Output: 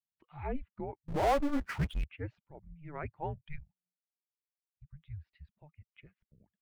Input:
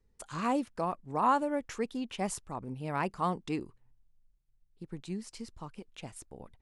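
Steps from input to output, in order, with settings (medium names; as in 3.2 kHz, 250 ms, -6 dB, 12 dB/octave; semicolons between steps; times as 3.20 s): expander on every frequency bin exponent 1.5; mistuned SSB -300 Hz 150–3000 Hz; 1.08–2.04 s: power-law waveshaper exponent 0.5; trim -4 dB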